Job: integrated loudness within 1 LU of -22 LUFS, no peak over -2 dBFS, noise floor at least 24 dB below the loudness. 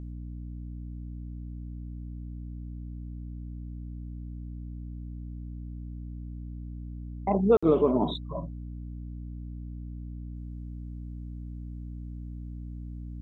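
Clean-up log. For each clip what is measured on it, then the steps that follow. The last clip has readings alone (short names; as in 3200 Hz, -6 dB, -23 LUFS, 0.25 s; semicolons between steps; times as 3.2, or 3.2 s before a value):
dropouts 1; longest dropout 55 ms; hum 60 Hz; harmonics up to 300 Hz; hum level -36 dBFS; loudness -34.0 LUFS; peak -10.0 dBFS; loudness target -22.0 LUFS
-> interpolate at 7.57, 55 ms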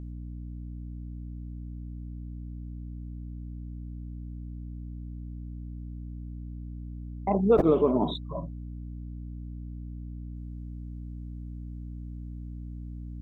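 dropouts 0; hum 60 Hz; harmonics up to 300 Hz; hum level -36 dBFS
-> notches 60/120/180/240/300 Hz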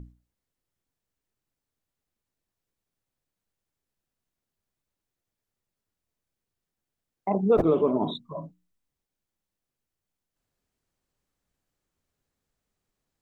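hum none; loudness -24.5 LUFS; peak -10.5 dBFS; loudness target -22.0 LUFS
-> gain +2.5 dB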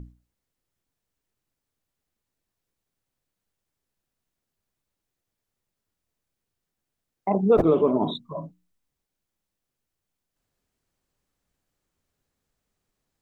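loudness -22.0 LUFS; peak -8.0 dBFS; noise floor -85 dBFS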